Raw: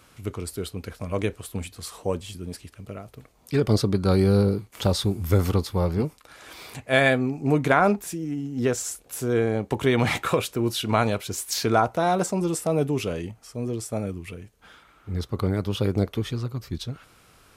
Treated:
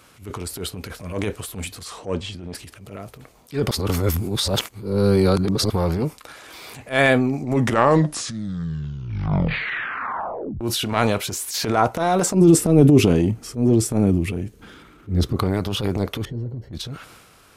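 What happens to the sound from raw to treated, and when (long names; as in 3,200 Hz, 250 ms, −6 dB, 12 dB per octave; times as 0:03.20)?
0:01.84–0:02.54: low-pass filter 8,200 Hz → 3,300 Hz
0:03.71–0:05.70: reverse
0:07.23: tape stop 3.38 s
0:12.34–0:15.36: low shelf with overshoot 470 Hz +10 dB, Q 1.5
0:16.25–0:16.73: moving average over 36 samples
whole clip: low-shelf EQ 85 Hz −6.5 dB; transient designer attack −11 dB, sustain +6 dB; level +4 dB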